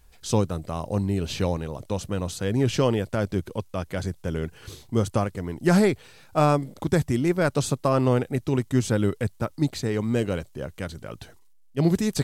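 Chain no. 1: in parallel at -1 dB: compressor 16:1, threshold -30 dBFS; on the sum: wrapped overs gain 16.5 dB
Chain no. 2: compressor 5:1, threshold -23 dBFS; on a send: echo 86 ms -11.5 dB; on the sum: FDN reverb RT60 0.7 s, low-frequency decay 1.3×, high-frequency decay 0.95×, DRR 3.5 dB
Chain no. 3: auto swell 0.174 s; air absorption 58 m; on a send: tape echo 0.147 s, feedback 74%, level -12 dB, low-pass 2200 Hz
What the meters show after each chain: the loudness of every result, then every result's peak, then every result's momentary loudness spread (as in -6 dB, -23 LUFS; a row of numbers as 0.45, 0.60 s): -24.5, -27.5, -28.0 LUFS; -16.5, -12.0, -9.0 dBFS; 9, 7, 16 LU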